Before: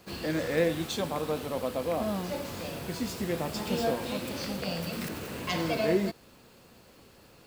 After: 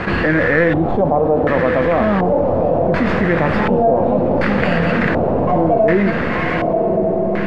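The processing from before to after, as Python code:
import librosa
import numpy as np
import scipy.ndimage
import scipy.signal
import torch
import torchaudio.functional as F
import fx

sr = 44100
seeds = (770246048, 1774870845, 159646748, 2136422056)

p1 = fx.tracing_dist(x, sr, depth_ms=0.32)
p2 = fx.low_shelf(p1, sr, hz=140.0, db=3.5)
p3 = p2 + fx.echo_diffused(p2, sr, ms=1055, feedback_pct=54, wet_db=-10.5, dry=0)
p4 = fx.filter_lfo_lowpass(p3, sr, shape='square', hz=0.68, low_hz=720.0, high_hz=1800.0, q=2.7)
p5 = fx.env_flatten(p4, sr, amount_pct=70)
y = p5 * librosa.db_to_amplitude(7.0)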